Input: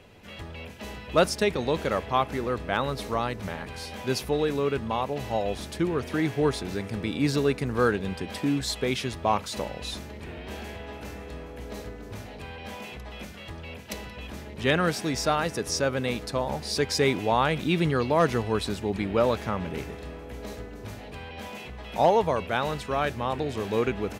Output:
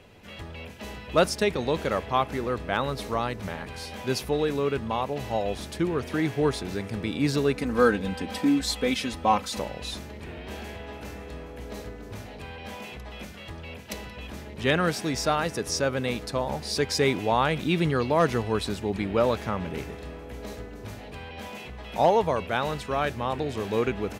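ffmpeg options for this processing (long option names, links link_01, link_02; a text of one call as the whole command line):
ffmpeg -i in.wav -filter_complex "[0:a]asettb=1/sr,asplit=3[link_01][link_02][link_03];[link_01]atrim=end=7.564[link_04];[link_02]atrim=start=7.56:end=9.59,asetpts=PTS-STARTPTS,afade=type=in:duration=0.004:curve=qsin,afade=type=out:start_time=2.026:duration=0.004:curve=qsin,aecho=1:1:3.9:0.71,atrim=end_sample=89523[link_05];[link_03]atrim=start=9.586[link_06];[link_04][link_05]acrossfade=duration=0.004:curve1=hsin:curve2=qsin[link_07];[link_07][link_06]acrossfade=duration=0.004:curve1=qsin:curve2=hsin" out.wav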